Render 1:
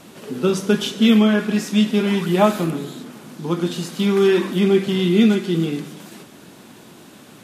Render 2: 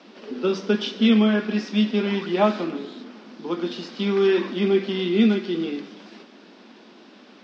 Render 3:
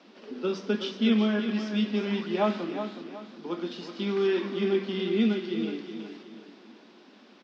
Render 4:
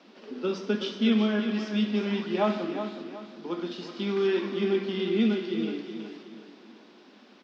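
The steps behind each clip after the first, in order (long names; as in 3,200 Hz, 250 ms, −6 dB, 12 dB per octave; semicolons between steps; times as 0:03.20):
Chebyshev band-pass filter 210–5,300 Hz, order 4; level −3 dB
repeating echo 369 ms, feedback 36%, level −9 dB; level −6.5 dB
convolution reverb RT60 0.80 s, pre-delay 49 ms, DRR 12 dB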